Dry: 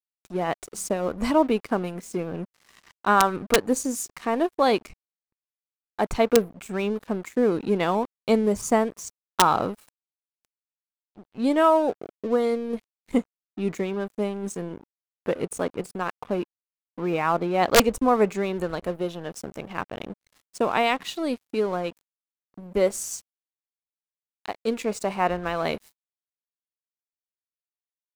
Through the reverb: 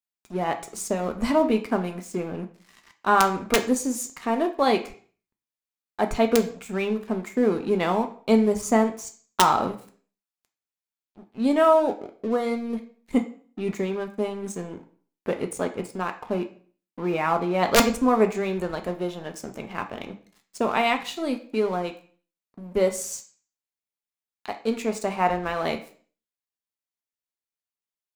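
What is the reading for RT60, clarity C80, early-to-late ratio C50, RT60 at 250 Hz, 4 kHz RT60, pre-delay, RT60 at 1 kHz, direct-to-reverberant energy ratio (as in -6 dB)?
0.50 s, 16.5 dB, 12.5 dB, 0.55 s, 0.40 s, 3 ms, 0.50 s, 4.5 dB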